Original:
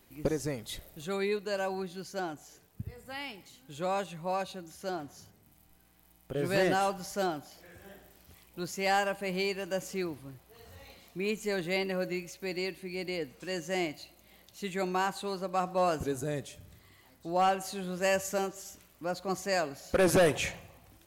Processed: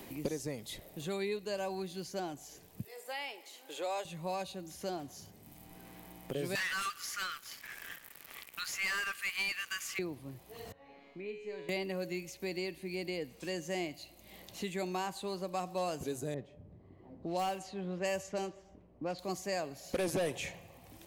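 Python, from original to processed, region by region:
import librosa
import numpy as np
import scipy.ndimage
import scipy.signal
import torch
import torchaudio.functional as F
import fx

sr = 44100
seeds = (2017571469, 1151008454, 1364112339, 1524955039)

y = fx.chain(x, sr, fx.highpass(hz=420.0, slope=24),
    fx.notch(hz=1100.0, q=23.0), at=(2.84, 4.05))
y = fx.chain(y, sr, fx.brickwall_highpass(low_hz=1100.0),
    fx.leveller(passes=3), at=(6.55, 9.99))
y = fx.chain(y, sr, fx.lowpass(hz=2000.0, slope=12),
    fx.peak_eq(hz=110.0, db=-13.5, octaves=0.72),
    fx.comb_fb(f0_hz=140.0, decay_s=0.95, harmonics='all', damping=0.0, mix_pct=90), at=(10.72, 11.69))
y = fx.chain(y, sr, fx.quant_companded(bits=6),
    fx.env_lowpass(base_hz=470.0, full_db=-24.0),
    fx.notch(hz=3500.0, q=28.0), at=(16.34, 19.19))
y = fx.peak_eq(y, sr, hz=1400.0, db=-7.5, octaves=0.53)
y = fx.band_squash(y, sr, depth_pct=70)
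y = F.gain(torch.from_numpy(y), -4.0).numpy()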